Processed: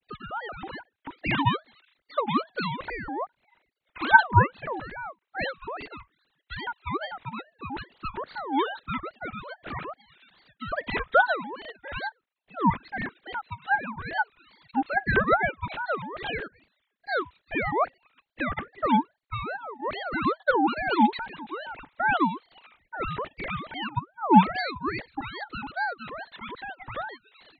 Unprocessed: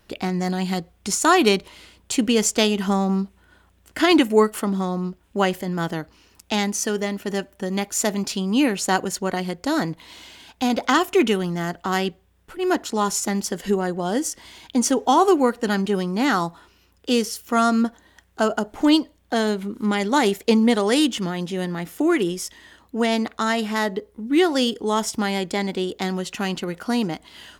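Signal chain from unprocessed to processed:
three sine waves on the formant tracks
ring modulator whose carrier an LFO sweeps 880 Hz, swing 40%, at 2.4 Hz
level −3.5 dB

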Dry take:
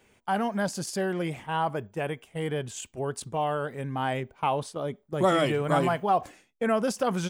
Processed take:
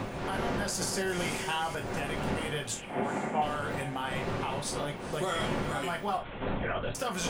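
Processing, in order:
wind on the microphone 410 Hz −25 dBFS
tilt shelving filter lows −7.5 dB, about 1,100 Hz
downward compressor 4 to 1, threshold −33 dBFS, peak gain reduction 15.5 dB
brickwall limiter −26 dBFS, peak gain reduction 5.5 dB
0:02.74–0:03.42: loudspeaker in its box 170–2,400 Hz, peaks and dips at 230 Hz +8 dB, 770 Hz +9 dB, 2,200 Hz +7 dB
on a send: feedback delay with all-pass diffusion 458 ms, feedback 43%, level −14 dB
0:06.17–0:06.95: on the sum: linear-prediction vocoder at 8 kHz whisper
reverb whose tail is shaped and stops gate 90 ms falling, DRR 2 dB
0:00.81–0:01.75: multiband upward and downward compressor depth 70%
level +2 dB

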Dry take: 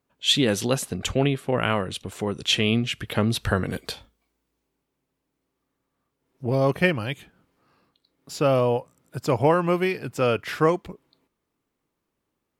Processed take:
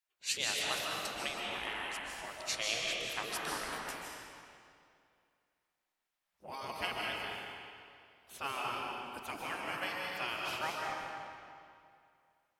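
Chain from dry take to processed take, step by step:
gate on every frequency bin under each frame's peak −15 dB weak
comb and all-pass reverb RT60 2.4 s, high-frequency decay 0.85×, pre-delay 105 ms, DRR −2.5 dB
level −6.5 dB

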